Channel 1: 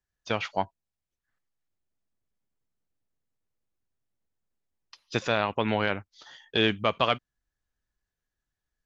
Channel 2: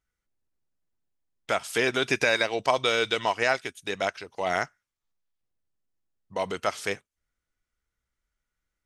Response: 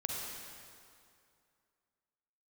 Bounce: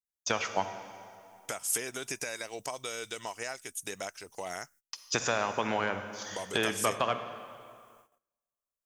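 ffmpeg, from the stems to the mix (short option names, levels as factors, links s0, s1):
-filter_complex "[0:a]lowshelf=f=150:g=-6.5,acrossover=split=750|1600[s0][s1][s2];[s0]acompressor=threshold=0.0126:ratio=4[s3];[s1]acompressor=threshold=0.0178:ratio=4[s4];[s2]acompressor=threshold=0.0112:ratio=4[s5];[s3][s4][s5]amix=inputs=3:normalize=0,adynamicequalizer=threshold=0.00398:dfrequency=1800:dqfactor=0.7:tfrequency=1800:tqfactor=0.7:attack=5:release=100:ratio=0.375:range=3.5:mode=cutabove:tftype=highshelf,volume=1.19,asplit=2[s6][s7];[s7]volume=0.473[s8];[1:a]acompressor=threshold=0.0224:ratio=4,volume=0.668[s9];[2:a]atrim=start_sample=2205[s10];[s8][s10]afir=irnorm=-1:irlink=0[s11];[s6][s9][s11]amix=inputs=3:normalize=0,agate=range=0.0501:threshold=0.00112:ratio=16:detection=peak,aexciter=amount=7.7:drive=3.6:freq=5700"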